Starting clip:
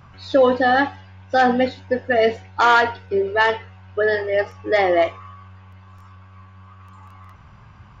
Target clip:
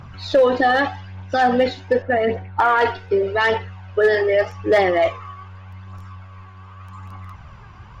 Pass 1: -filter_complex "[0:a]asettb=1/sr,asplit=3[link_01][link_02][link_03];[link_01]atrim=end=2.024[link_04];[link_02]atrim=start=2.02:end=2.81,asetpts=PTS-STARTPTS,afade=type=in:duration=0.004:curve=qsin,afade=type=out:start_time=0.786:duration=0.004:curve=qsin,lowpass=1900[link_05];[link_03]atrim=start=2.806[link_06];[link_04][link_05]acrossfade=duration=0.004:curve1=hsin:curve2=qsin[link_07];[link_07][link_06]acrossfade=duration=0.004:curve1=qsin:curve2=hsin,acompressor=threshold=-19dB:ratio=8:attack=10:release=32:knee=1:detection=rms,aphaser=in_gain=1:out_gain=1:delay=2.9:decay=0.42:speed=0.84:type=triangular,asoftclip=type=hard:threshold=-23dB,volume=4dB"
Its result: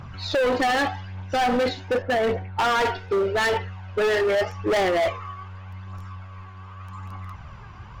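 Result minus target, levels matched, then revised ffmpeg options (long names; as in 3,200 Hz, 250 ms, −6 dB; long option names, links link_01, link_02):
hard clipping: distortion +22 dB
-filter_complex "[0:a]asettb=1/sr,asplit=3[link_01][link_02][link_03];[link_01]atrim=end=2.024[link_04];[link_02]atrim=start=2.02:end=2.81,asetpts=PTS-STARTPTS,afade=type=in:duration=0.004:curve=qsin,afade=type=out:start_time=0.786:duration=0.004:curve=qsin,lowpass=1900[link_05];[link_03]atrim=start=2.806[link_06];[link_04][link_05]acrossfade=duration=0.004:curve1=hsin:curve2=qsin[link_07];[link_07][link_06]acrossfade=duration=0.004:curve1=qsin:curve2=hsin,acompressor=threshold=-19dB:ratio=8:attack=10:release=32:knee=1:detection=rms,aphaser=in_gain=1:out_gain=1:delay=2.9:decay=0.42:speed=0.84:type=triangular,asoftclip=type=hard:threshold=-12.5dB,volume=4dB"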